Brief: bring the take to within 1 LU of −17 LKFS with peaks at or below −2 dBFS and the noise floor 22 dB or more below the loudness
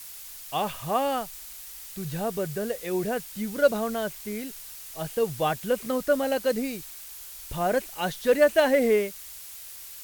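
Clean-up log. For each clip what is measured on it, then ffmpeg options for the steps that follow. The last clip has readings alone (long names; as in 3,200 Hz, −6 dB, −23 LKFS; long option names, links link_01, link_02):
background noise floor −43 dBFS; target noise floor −49 dBFS; integrated loudness −27.0 LKFS; sample peak −7.5 dBFS; target loudness −17.0 LKFS
→ -af "afftdn=noise_reduction=6:noise_floor=-43"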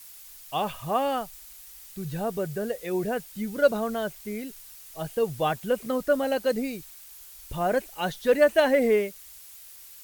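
background noise floor −47 dBFS; target noise floor −49 dBFS
→ -af "afftdn=noise_reduction=6:noise_floor=-47"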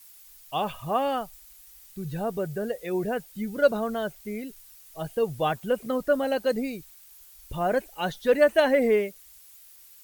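background noise floor −52 dBFS; integrated loudness −27.0 LKFS; sample peak −8.0 dBFS; target loudness −17.0 LKFS
→ -af "volume=10dB,alimiter=limit=-2dB:level=0:latency=1"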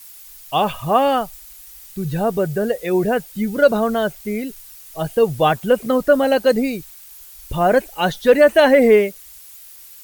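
integrated loudness −17.5 LKFS; sample peak −2.0 dBFS; background noise floor −42 dBFS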